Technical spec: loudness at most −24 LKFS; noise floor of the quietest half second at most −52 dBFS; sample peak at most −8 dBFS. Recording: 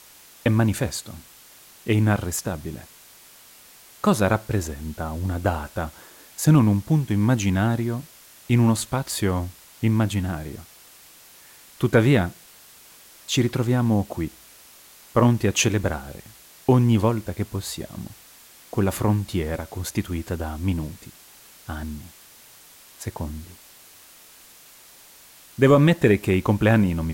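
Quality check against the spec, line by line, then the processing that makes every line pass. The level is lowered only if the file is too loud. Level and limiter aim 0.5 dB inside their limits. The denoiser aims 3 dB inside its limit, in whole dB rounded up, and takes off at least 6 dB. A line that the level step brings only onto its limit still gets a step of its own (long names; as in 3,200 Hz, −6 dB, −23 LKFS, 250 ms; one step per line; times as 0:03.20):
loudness −22.5 LKFS: out of spec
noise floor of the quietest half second −49 dBFS: out of spec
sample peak −6.5 dBFS: out of spec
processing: broadband denoise 6 dB, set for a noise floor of −49 dBFS
level −2 dB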